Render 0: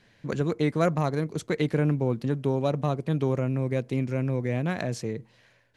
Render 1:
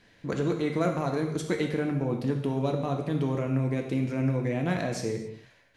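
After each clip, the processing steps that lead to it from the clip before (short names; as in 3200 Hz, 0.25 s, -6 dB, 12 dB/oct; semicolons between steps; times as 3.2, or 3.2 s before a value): limiter -18.5 dBFS, peak gain reduction 6.5 dB; non-linear reverb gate 0.3 s falling, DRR 2.5 dB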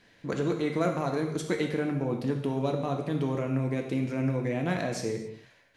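low shelf 120 Hz -5.5 dB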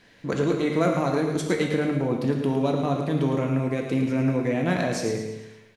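feedback echo 0.11 s, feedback 47%, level -8 dB; gain +4.5 dB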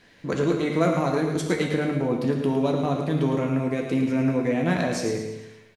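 doubler 12 ms -11.5 dB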